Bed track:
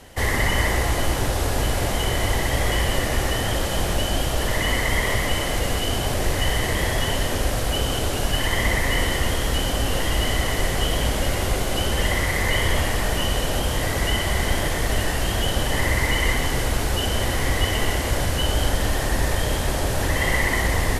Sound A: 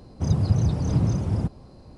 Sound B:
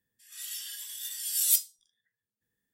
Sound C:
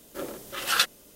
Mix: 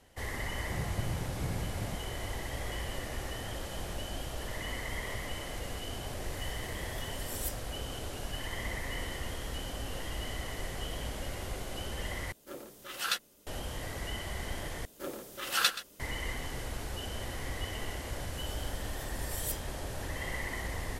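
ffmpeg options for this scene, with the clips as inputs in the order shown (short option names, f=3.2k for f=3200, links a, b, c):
-filter_complex "[2:a]asplit=2[a][b];[3:a]asplit=2[c][d];[0:a]volume=-16dB[e];[1:a]lowpass=f=2.2k:t=q:w=15[f];[c]asplit=2[g][h];[h]adelay=14,volume=-12.5dB[i];[g][i]amix=inputs=2:normalize=0[j];[d]aecho=1:1:127:0.188[k];[e]asplit=3[l][m][n];[l]atrim=end=12.324[o];[j]atrim=end=1.15,asetpts=PTS-STARTPTS,volume=-9.5dB[p];[m]atrim=start=13.466:end=14.854[q];[k]atrim=end=1.15,asetpts=PTS-STARTPTS,volume=-4.5dB[r];[n]atrim=start=15.996[s];[f]atrim=end=1.97,asetpts=PTS-STARTPTS,volume=-16dB,afade=t=in:d=0.004:c=hsin,afade=t=out:st=1.966:d=0.004:c=hsin,adelay=480[t];[a]atrim=end=2.73,asetpts=PTS-STARTPTS,volume=-15.5dB,afade=t=in:d=0.004:c=hsin,afade=t=out:st=2.726:d=0.004:c=hsin,adelay=261513S[u];[b]atrim=end=2.73,asetpts=PTS-STARTPTS,volume=-14dB,afade=t=in:d=0.004:c=hsin,afade=t=out:st=2.726:d=0.004:c=hsin,adelay=792036S[v];[o][p]acrossfade=d=0.004:c1=hsin:c2=hsin[w];[w][q]acrossfade=d=0.004:c1=hsin:c2=hsin[x];[x][r]acrossfade=d=0.004:c1=hsin:c2=hsin[y];[y][s]acrossfade=d=0.004:c1=hsin:c2=hsin[z];[z][t][u][v]amix=inputs=4:normalize=0"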